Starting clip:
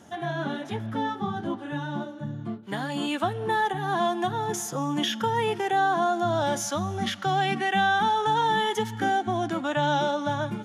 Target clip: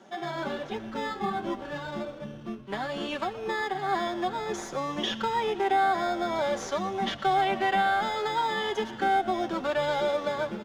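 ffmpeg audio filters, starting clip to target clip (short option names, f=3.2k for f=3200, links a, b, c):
-filter_complex "[0:a]asplit=2[a][b];[b]acrusher=samples=15:mix=1:aa=0.000001,volume=-5.5dB[c];[a][c]amix=inputs=2:normalize=0,acrossover=split=250 5800:gain=0.178 1 0.126[d][e][f];[d][e][f]amix=inputs=3:normalize=0,alimiter=limit=-15dB:level=0:latency=1:release=431,aecho=1:1:5.2:0.53,asplit=7[g][h][i][j][k][l][m];[h]adelay=118,afreqshift=-86,volume=-17dB[n];[i]adelay=236,afreqshift=-172,volume=-20.9dB[o];[j]adelay=354,afreqshift=-258,volume=-24.8dB[p];[k]adelay=472,afreqshift=-344,volume=-28.6dB[q];[l]adelay=590,afreqshift=-430,volume=-32.5dB[r];[m]adelay=708,afreqshift=-516,volume=-36.4dB[s];[g][n][o][p][q][r][s]amix=inputs=7:normalize=0,volume=-3.5dB"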